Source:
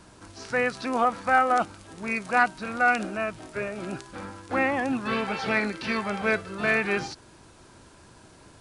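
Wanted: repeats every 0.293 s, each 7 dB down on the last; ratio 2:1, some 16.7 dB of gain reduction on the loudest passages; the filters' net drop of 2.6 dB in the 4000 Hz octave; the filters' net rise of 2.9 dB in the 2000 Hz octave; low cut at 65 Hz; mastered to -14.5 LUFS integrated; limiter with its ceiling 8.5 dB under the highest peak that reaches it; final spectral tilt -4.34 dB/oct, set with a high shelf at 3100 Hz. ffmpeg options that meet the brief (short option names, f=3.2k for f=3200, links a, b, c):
-af "highpass=65,equalizer=f=2k:t=o:g=4.5,highshelf=f=3.1k:g=4,equalizer=f=4k:t=o:g=-8.5,acompressor=threshold=-46dB:ratio=2,alimiter=level_in=8dB:limit=-24dB:level=0:latency=1,volume=-8dB,aecho=1:1:293|586|879|1172|1465:0.447|0.201|0.0905|0.0407|0.0183,volume=27.5dB"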